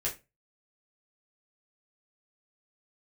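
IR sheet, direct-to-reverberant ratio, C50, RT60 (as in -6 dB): -6.5 dB, 12.5 dB, 0.25 s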